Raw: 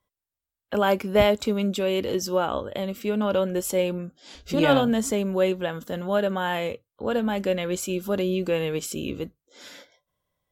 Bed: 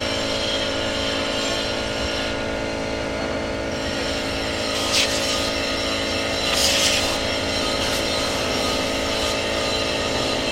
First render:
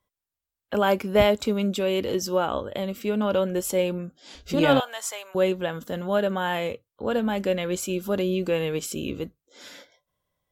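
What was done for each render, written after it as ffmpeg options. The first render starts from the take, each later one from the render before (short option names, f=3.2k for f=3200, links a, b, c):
-filter_complex "[0:a]asettb=1/sr,asplit=3[a][b][c];[a]atrim=end=4.804[d];[b]atrim=start=4.8:end=5.35,asetpts=PTS-STARTPTS,afade=t=in:d=0.004:c=qsin,afade=t=out:st=0.546:d=0.004:c=qsin,highpass=f=760:w=0.5412,highpass=f=760:w=1.3066[e];[c]atrim=start=5.346[f];[d][e]acrossfade=d=0.004:c1=hsin:c2=qsin[g];[g][f]acrossfade=d=0.004:c1=qsin:c2=hsin"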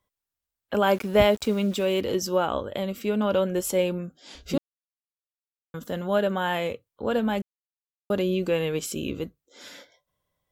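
-filter_complex "[0:a]asettb=1/sr,asplit=3[a][b][c];[a]atrim=end=0.934[d];[b]atrim=start=0.93:end=2.01,asetpts=PTS-STARTPTS,afade=t=in:d=0.004:c=qsin,afade=t=out:st=1.076:d=0.004:c=qsin,aeval=exprs='val(0)*gte(abs(val(0)),0.01)':c=same[e];[c]atrim=start=2.006[f];[d][e]acrossfade=d=0.004:c1=hsin:c2=qsin[g];[g][f]acrossfade=d=0.004:c1=qsin:c2=hsin,asplit=5[h][i][j][k][l];[h]atrim=end=4.58,asetpts=PTS-STARTPTS,afade=t=out:st=4.576:d=0.004:c=hsin[m];[i]atrim=start=4.58:end=5.74,asetpts=PTS-STARTPTS,volume=0[n];[j]atrim=start=5.74:end=7.42,asetpts=PTS-STARTPTS,afade=t=in:d=0.004:c=hsin,afade=t=out:st=1.676:d=0.004:c=hsin[o];[k]atrim=start=7.42:end=8.1,asetpts=PTS-STARTPTS,volume=0[p];[l]atrim=start=8.1,asetpts=PTS-STARTPTS,afade=t=in:d=0.004:c=hsin[q];[m][n][o][p][q]concat=n=5:v=0:a=1"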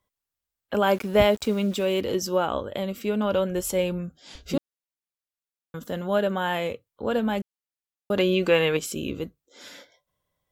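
-filter_complex "[0:a]asettb=1/sr,asplit=3[a][b][c];[a]atrim=end=3.034[d];[b]atrim=start=3.03:end=4.36,asetpts=PTS-STARTPTS,afade=t=in:d=0.004:c=qsin,afade=t=out:st=1.326:d=0.004:c=qsin,asubboost=boost=10:cutoff=130[e];[c]atrim=start=4.356[f];[d][e]acrossfade=d=0.004:c1=hsin:c2=qsin[g];[g][f]acrossfade=d=0.004:c1=qsin:c2=hsin,asettb=1/sr,asplit=3[h][i][j];[h]atrim=end=8.174[k];[i]atrim=start=8.17:end=8.77,asetpts=PTS-STARTPTS,afade=t=in:d=0.004:c=qsin,afade=t=out:st=0.596:d=0.004:c=qsin,equalizer=f=1.7k:w=0.35:g=10[l];[j]atrim=start=8.766[m];[k][l]acrossfade=d=0.004:c1=hsin:c2=qsin[n];[n][m]acrossfade=d=0.004:c1=qsin:c2=hsin"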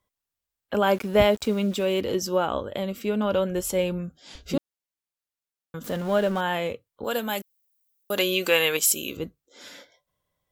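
-filter_complex "[0:a]asettb=1/sr,asplit=3[a][b][c];[a]atrim=end=5.844[d];[b]atrim=start=5.84:end=6.41,asetpts=PTS-STARTPTS,afade=t=in:d=0.004:c=qsin,afade=t=out:st=0.566:d=0.004:c=qsin,aeval=exprs='val(0)+0.5*0.0168*sgn(val(0))':c=same[e];[c]atrim=start=6.406[f];[d][e]acrossfade=d=0.004:c1=hsin:c2=qsin[g];[g][f]acrossfade=d=0.004:c1=qsin:c2=hsin,asettb=1/sr,asplit=3[h][i][j];[h]atrim=end=7.044[k];[i]atrim=start=7.04:end=9.17,asetpts=PTS-STARTPTS,afade=t=in:d=0.004:c=qsin,afade=t=out:st=2.126:d=0.004:c=qsin,aemphasis=mode=production:type=riaa[l];[j]atrim=start=9.166[m];[k][l]acrossfade=d=0.004:c1=hsin:c2=qsin[n];[n][m]acrossfade=d=0.004:c1=qsin:c2=hsin"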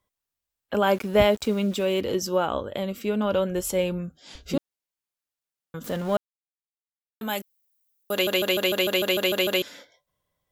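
-filter_complex "[0:a]asplit=13[a][b][c][d][e][f][g][h][i][j][k][l][m];[a]atrim=end=6.17,asetpts=PTS-STARTPTS,afade=t=out:st=6.166:d=0.004:c=hsin[n];[b]atrim=start=6.17:end=7.21,asetpts=PTS-STARTPTS,volume=0[o];[c]atrim=start=7.21:end=8.272,asetpts=PTS-STARTPTS,afade=t=in:d=0.004:c=hsin[p];[d]atrim=start=8.118:end=8.272[q];[e]atrim=start=8.118:end=8.272[r];[f]atrim=start=8.118:end=8.272[s];[g]atrim=start=8.118:end=8.272[t];[h]atrim=start=8.118:end=8.272[u];[i]atrim=start=8.118:end=8.272[v];[j]atrim=start=8.118:end=8.272[w];[k]atrim=start=8.118:end=8.272[x];[l]atrim=start=8.118:end=8.272[y];[m]atrim=start=9.618[z];[n][o][p]concat=n=3:v=0:a=1[aa];[aa][q]acrossfade=d=0.004:c1=hsin:c2=hsin[ab];[ab][r]acrossfade=d=0.004:c1=hsin:c2=hsin[ac];[ac][s]acrossfade=d=0.004:c1=hsin:c2=hsin[ad];[ad][t]acrossfade=d=0.004:c1=hsin:c2=hsin[ae];[ae][u]acrossfade=d=0.004:c1=hsin:c2=hsin[af];[af][v]acrossfade=d=0.004:c1=hsin:c2=hsin[ag];[ag][w]acrossfade=d=0.004:c1=hsin:c2=hsin[ah];[ah][x]acrossfade=d=0.004:c1=hsin:c2=hsin[ai];[ai][y]acrossfade=d=0.004:c1=hsin:c2=hsin[aj];[aj][z]acrossfade=d=0.004:c1=hsin:c2=hsin"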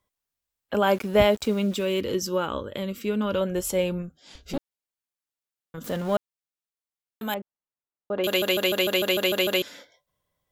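-filter_complex "[0:a]asettb=1/sr,asplit=3[a][b][c];[a]atrim=end=1.774[d];[b]atrim=start=1.77:end=3.41,asetpts=PTS-STARTPTS,afade=t=in:d=0.004:c=qsin,afade=t=out:st=1.636:d=0.004:c=qsin,equalizer=f=720:t=o:w=0.4:g=-12[e];[c]atrim=start=3.406[f];[d][e]acrossfade=d=0.004:c1=hsin:c2=qsin[g];[g][f]acrossfade=d=0.004:c1=qsin:c2=hsin,asettb=1/sr,asplit=3[h][i][j];[h]atrim=end=4.024[k];[i]atrim=start=4.02:end=5.78,asetpts=PTS-STARTPTS,afade=t=in:d=0.004:c=qsin,afade=t=out:st=1.756:d=0.004:c=qsin,aeval=exprs='(tanh(11.2*val(0)+0.65)-tanh(0.65))/11.2':c=same[l];[j]atrim=start=5.776[m];[k][l]acrossfade=d=0.004:c1=hsin:c2=qsin[n];[n][m]acrossfade=d=0.004:c1=qsin:c2=hsin,asettb=1/sr,asplit=3[o][p][q];[o]atrim=end=7.344[r];[p]atrim=start=7.34:end=8.24,asetpts=PTS-STARTPTS,afade=t=in:d=0.004:c=qsin,afade=t=out:st=0.896:d=0.004:c=qsin,lowpass=1.1k[s];[q]atrim=start=8.236[t];[r][s]acrossfade=d=0.004:c1=hsin:c2=qsin[u];[u][t]acrossfade=d=0.004:c1=qsin:c2=hsin"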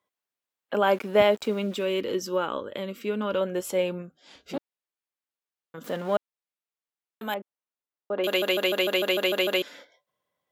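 -af "highpass=150,bass=f=250:g=-6,treble=f=4k:g=-7"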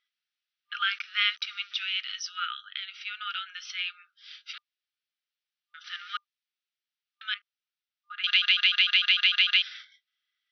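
-af "afftfilt=real='re*between(b*sr/4096,1200,6100)':imag='im*between(b*sr/4096,1200,6100)':win_size=4096:overlap=0.75,equalizer=f=3.3k:t=o:w=1.2:g=8"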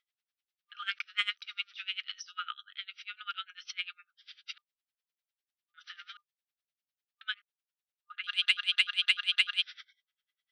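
-af "asoftclip=type=tanh:threshold=-10dB,aeval=exprs='val(0)*pow(10,-25*(0.5-0.5*cos(2*PI*10*n/s))/20)':c=same"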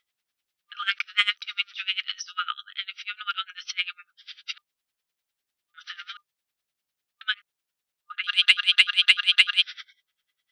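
-af "volume=9dB"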